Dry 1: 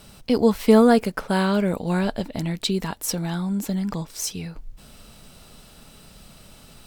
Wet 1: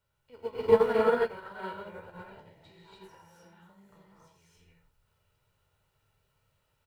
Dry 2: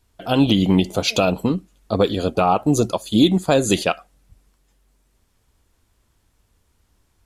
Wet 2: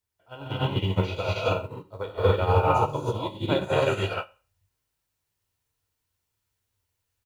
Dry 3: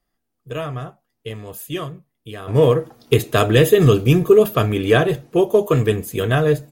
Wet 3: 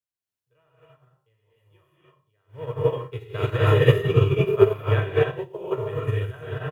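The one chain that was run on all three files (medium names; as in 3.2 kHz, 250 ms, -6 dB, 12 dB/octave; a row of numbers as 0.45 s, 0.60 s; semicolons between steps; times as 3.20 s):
spectral sustain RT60 0.37 s; three-band isolator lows -12 dB, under 580 Hz, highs -20 dB, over 2.8 kHz; comb 2.1 ms, depth 54%; word length cut 10-bit, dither triangular; peaking EQ 100 Hz +14 dB 1.1 oct; on a send: delay 88 ms -13.5 dB; on the sum: gated-style reverb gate 330 ms rising, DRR -5.5 dB; upward expansion 2.5:1, over -25 dBFS; trim -5.5 dB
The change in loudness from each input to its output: -5.5 LU, -7.0 LU, -6.0 LU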